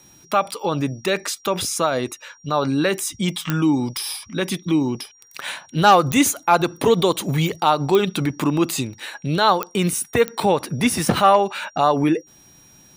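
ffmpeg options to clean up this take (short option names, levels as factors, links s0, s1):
-af "adeclick=t=4,bandreject=f=5700:w=30"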